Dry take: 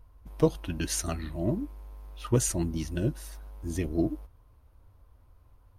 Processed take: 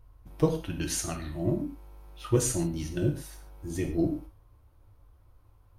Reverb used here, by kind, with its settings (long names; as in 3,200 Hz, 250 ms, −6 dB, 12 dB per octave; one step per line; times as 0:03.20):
reverb whose tail is shaped and stops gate 170 ms falling, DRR 3 dB
level −2 dB